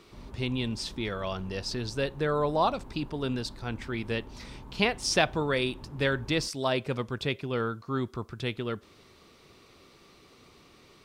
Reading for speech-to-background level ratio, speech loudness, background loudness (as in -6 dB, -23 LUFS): 17.5 dB, -30.5 LUFS, -48.0 LUFS